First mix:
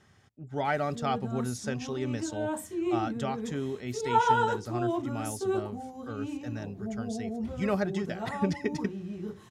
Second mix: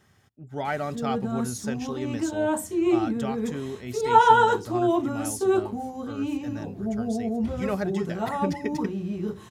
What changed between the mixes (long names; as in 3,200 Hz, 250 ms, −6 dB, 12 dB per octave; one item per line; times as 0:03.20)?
speech: remove low-pass filter 8,400 Hz
background +7.5 dB